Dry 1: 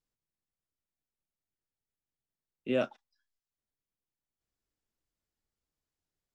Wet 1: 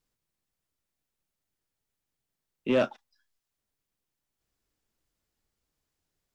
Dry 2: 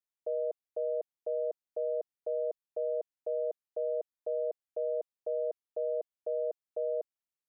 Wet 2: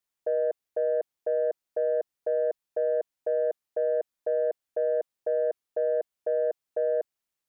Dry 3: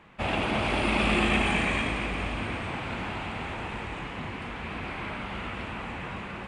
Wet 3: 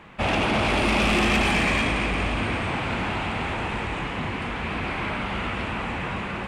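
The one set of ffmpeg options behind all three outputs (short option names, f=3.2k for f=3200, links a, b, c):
-af "asoftclip=type=tanh:threshold=-24dB,volume=7.5dB"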